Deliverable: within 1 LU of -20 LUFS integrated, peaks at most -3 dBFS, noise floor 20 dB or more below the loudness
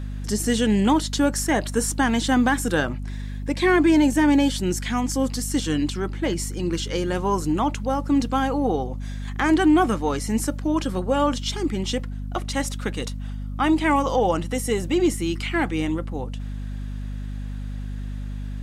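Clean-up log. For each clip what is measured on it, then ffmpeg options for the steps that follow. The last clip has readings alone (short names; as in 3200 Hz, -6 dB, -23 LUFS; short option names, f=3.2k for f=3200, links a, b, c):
hum 50 Hz; harmonics up to 250 Hz; hum level -28 dBFS; loudness -23.0 LUFS; peak -8.5 dBFS; loudness target -20.0 LUFS
-> -af "bandreject=f=50:t=h:w=4,bandreject=f=100:t=h:w=4,bandreject=f=150:t=h:w=4,bandreject=f=200:t=h:w=4,bandreject=f=250:t=h:w=4"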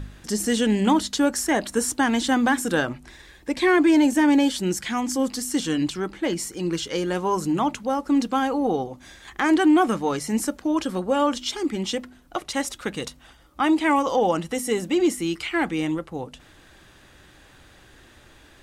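hum none; loudness -23.0 LUFS; peak -7.5 dBFS; loudness target -20.0 LUFS
-> -af "volume=3dB"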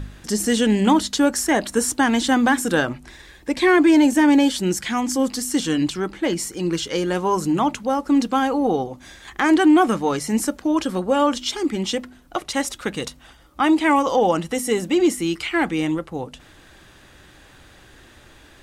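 loudness -20.0 LUFS; peak -4.5 dBFS; noise floor -49 dBFS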